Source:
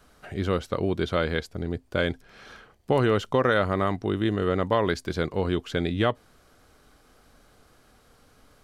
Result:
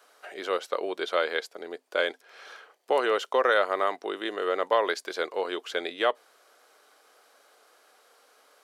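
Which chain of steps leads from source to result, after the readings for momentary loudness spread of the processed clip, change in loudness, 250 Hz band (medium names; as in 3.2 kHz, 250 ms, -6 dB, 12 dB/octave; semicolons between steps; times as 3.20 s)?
17 LU, -2.0 dB, -12.0 dB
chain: high-pass 440 Hz 24 dB/octave; trim +1 dB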